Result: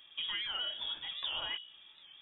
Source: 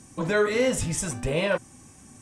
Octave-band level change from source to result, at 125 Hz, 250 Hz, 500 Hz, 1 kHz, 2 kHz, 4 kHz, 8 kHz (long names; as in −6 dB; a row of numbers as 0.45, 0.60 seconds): below −30 dB, −34.5 dB, −32.5 dB, −13.5 dB, −13.5 dB, +4.5 dB, below −40 dB